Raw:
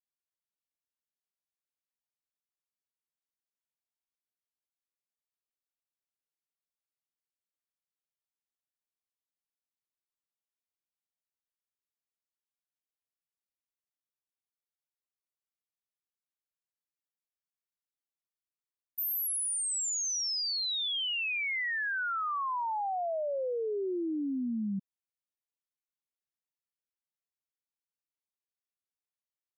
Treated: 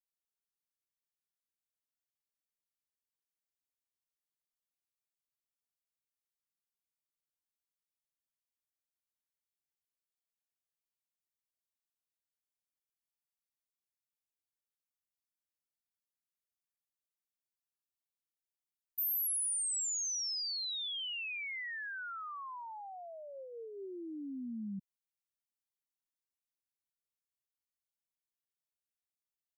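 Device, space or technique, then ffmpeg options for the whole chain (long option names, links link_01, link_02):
smiley-face EQ: -filter_complex "[0:a]asplit=3[link_01][link_02][link_03];[link_01]afade=type=out:start_time=23.32:duration=0.02[link_04];[link_02]asplit=2[link_05][link_06];[link_06]adelay=13,volume=-14dB[link_07];[link_05][link_07]amix=inputs=2:normalize=0,afade=type=in:start_time=23.32:duration=0.02,afade=type=out:start_time=23.85:duration=0.02[link_08];[link_03]afade=type=in:start_time=23.85:duration=0.02[link_09];[link_04][link_08][link_09]amix=inputs=3:normalize=0,lowshelf=frequency=180:gain=6,equalizer=frequency=590:width_type=o:width=1.7:gain=-7.5,highshelf=frequency=5100:gain=8,volume=-8.5dB"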